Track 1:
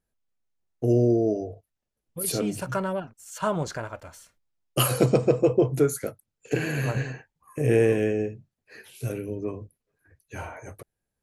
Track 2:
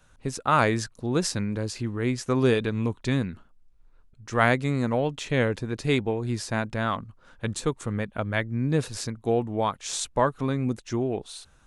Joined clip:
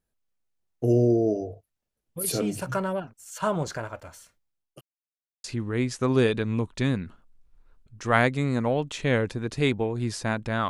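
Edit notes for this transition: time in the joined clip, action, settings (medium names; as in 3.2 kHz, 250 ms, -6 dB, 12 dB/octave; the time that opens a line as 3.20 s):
track 1
4.24–4.81 s: fade out equal-power
4.81–5.44 s: mute
5.44 s: go over to track 2 from 1.71 s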